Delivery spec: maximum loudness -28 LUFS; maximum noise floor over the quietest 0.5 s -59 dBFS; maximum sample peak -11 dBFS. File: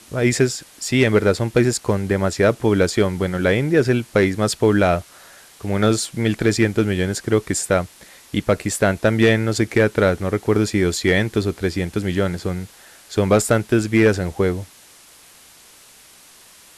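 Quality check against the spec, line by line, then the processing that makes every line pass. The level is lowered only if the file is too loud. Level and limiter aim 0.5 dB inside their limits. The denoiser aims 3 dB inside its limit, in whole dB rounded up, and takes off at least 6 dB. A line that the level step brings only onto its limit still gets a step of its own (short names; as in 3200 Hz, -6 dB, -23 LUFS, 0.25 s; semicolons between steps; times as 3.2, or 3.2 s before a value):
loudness -19.0 LUFS: fail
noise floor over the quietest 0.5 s -48 dBFS: fail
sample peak -4.5 dBFS: fail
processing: denoiser 6 dB, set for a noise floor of -48 dBFS; gain -9.5 dB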